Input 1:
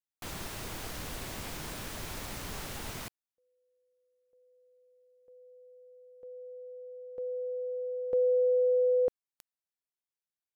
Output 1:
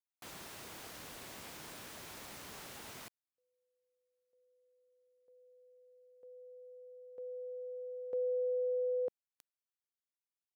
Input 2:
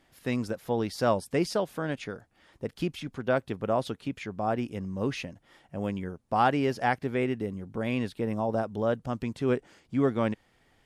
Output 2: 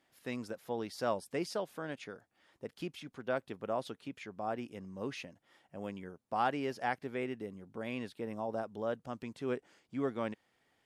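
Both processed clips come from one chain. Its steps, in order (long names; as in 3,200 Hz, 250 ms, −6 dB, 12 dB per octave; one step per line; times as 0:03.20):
high-pass filter 250 Hz 6 dB per octave
level −7.5 dB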